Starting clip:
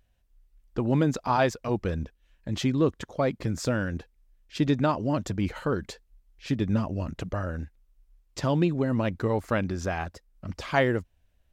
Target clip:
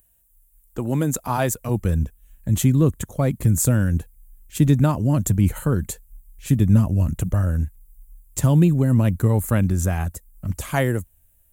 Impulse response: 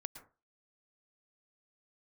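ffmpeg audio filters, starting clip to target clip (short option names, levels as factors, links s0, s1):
-filter_complex "[0:a]acrossover=split=190[s0][s1];[s0]dynaudnorm=f=460:g=7:m=5.01[s2];[s1]aexciter=amount=9.5:drive=9.2:freq=7500[s3];[s2][s3]amix=inputs=2:normalize=0"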